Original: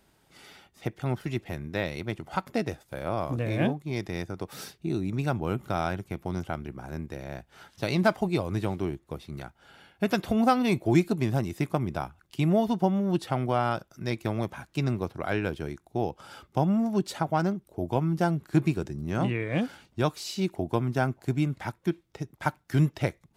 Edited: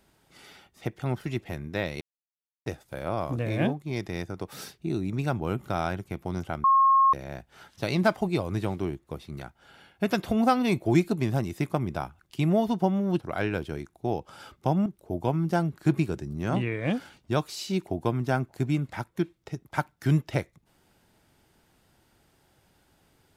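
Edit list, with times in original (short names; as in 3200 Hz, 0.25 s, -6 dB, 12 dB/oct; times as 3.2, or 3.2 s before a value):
2.01–2.66 mute
6.64–7.13 bleep 1080 Hz -16 dBFS
13.2–15.11 cut
16.77–17.54 cut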